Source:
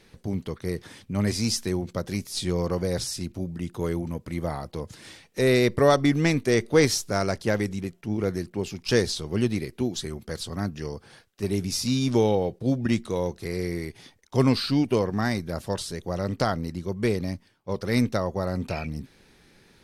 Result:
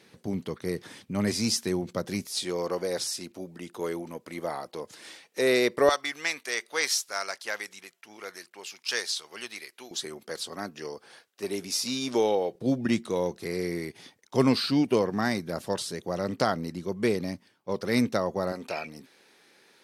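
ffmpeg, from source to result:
-af "asetnsamples=n=441:p=0,asendcmd='2.27 highpass f 360;5.89 highpass f 1100;9.91 highpass f 380;12.55 highpass f 180;18.52 highpass f 400',highpass=160"

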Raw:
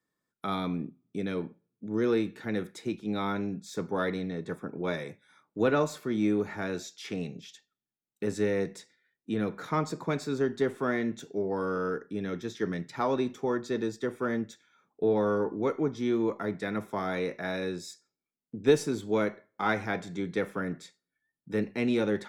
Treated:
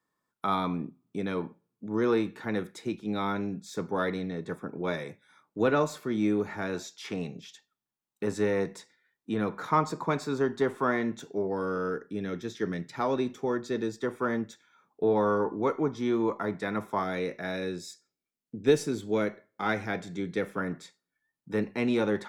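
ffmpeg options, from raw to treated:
-af "asetnsamples=n=441:p=0,asendcmd='2.6 equalizer g 2.5;6.73 equalizer g 8.5;11.47 equalizer g -0.5;13.98 equalizer g 6.5;17.04 equalizer g -3;20.58 equalizer g 6.5',equalizer=f=1k:t=o:w=0.83:g=9"

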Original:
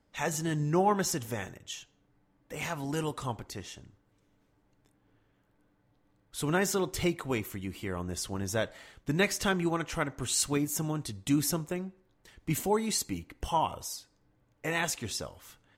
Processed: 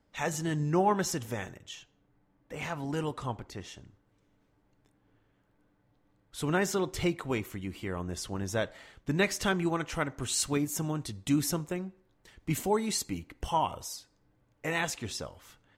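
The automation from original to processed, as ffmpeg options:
-af "asetnsamples=n=441:p=0,asendcmd='1.69 lowpass f 3300;3.61 lowpass f 6200;9.32 lowpass f 10000;14.83 lowpass f 6000',lowpass=f=7.8k:p=1"

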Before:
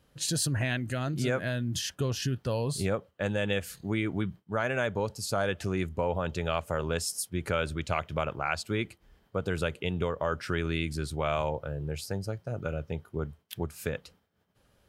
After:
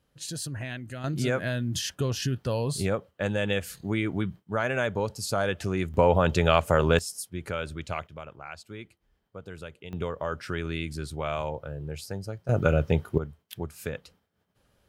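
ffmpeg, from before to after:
-af "asetnsamples=n=441:p=0,asendcmd='1.04 volume volume 2dB;5.94 volume volume 9dB;6.99 volume volume -3dB;8.07 volume volume -11dB;9.93 volume volume -1.5dB;12.49 volume volume 11dB;13.18 volume volume -1dB',volume=-6dB"

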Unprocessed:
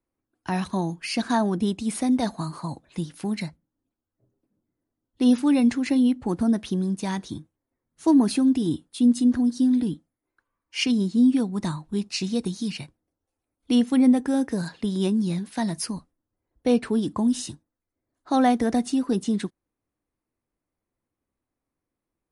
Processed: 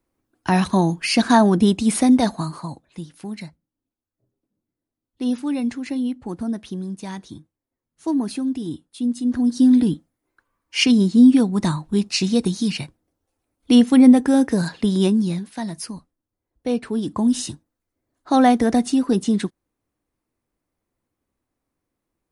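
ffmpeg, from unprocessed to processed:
-af "volume=26.5dB,afade=t=out:st=1.98:d=0.88:silence=0.237137,afade=t=in:st=9.22:d=0.47:silence=0.281838,afade=t=out:st=14.95:d=0.59:silence=0.354813,afade=t=in:st=16.87:d=0.53:silence=0.446684"

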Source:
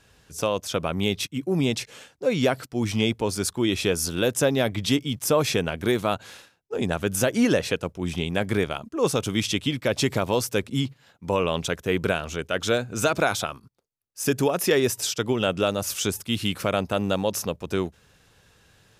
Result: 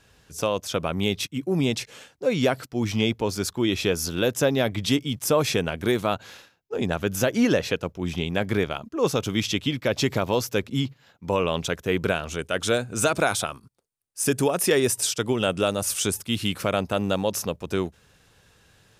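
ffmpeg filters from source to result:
-af "asetnsamples=n=441:p=0,asendcmd='2.7 equalizer g -8;4.71 equalizer g -1;6.06 equalizer g -10;11.29 equalizer g -3;12.31 equalizer g 9;16.15 equalizer g 1',equalizer=f=9k:t=o:w=0.34:g=-1.5"

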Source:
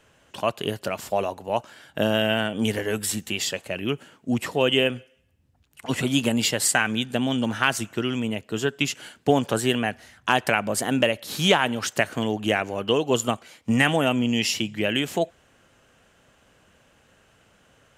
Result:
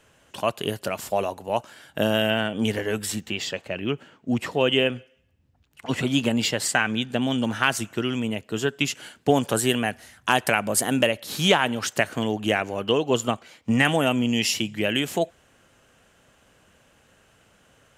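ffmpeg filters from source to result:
-af "asetnsamples=n=441:p=0,asendcmd='2.3 equalizer g -5;3.2 equalizer g -15;4.31 equalizer g -8;7.22 equalizer g 0.5;9.34 equalizer g 7.5;11.07 equalizer g 0.5;12.91 equalizer g -6;13.85 equalizer g 3.5',equalizer=f=11k:t=o:w=1.1:g=4"

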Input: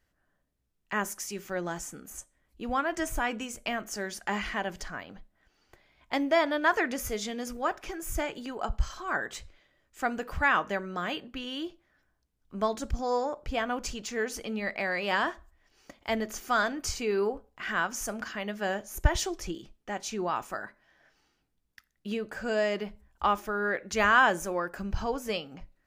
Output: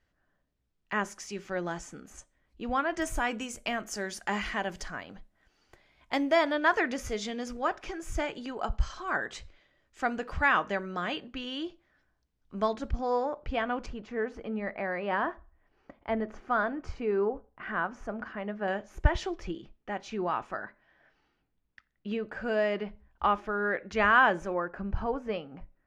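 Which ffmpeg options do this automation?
-af "asetnsamples=n=441:p=0,asendcmd='3.02 lowpass f 11000;6.52 lowpass f 5900;12.73 lowpass f 3200;13.86 lowpass f 1500;18.68 lowpass f 2900;24.54 lowpass f 1800',lowpass=5.1k"

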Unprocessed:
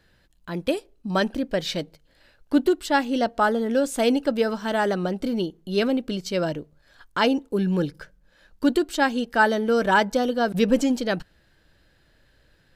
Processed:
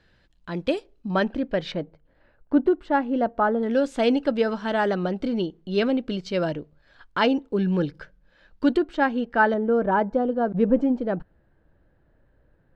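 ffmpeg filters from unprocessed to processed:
-af "asetnsamples=n=441:p=0,asendcmd='1.08 lowpass f 2800;1.72 lowpass f 1400;3.63 lowpass f 3800;8.77 lowpass f 2000;9.54 lowpass f 1000',lowpass=5k"

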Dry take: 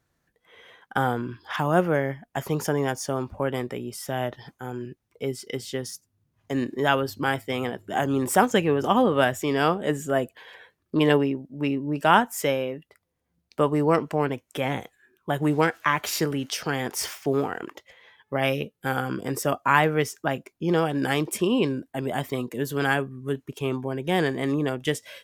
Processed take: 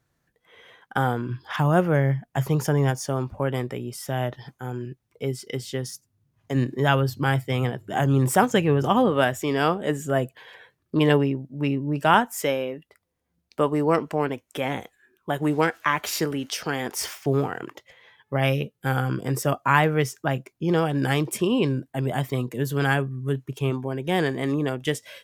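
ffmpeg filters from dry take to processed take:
-af "asetnsamples=n=441:p=0,asendcmd='1.29 equalizer g 13.5;2.9 equalizer g 6.5;6.55 equalizer g 13.5;9.1 equalizer g 2;10.05 equalizer g 8;12.14 equalizer g -3;17.26 equalizer g 9;23.7 equalizer g 2.5',equalizer=f=130:t=o:w=0.43:g=4.5"

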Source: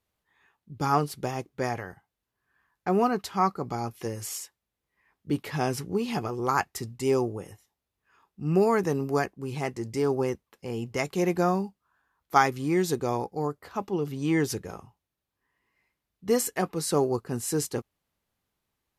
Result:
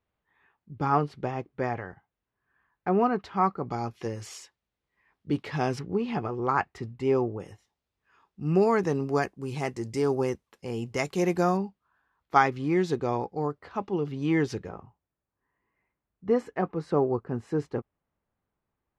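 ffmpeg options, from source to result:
-af "asetnsamples=n=441:p=0,asendcmd='3.71 lowpass f 4700;5.79 lowpass f 2500;7.4 lowpass f 5700;9.22 lowpass f 10000;11.57 lowpass f 3700;14.69 lowpass f 1600',lowpass=2.5k"

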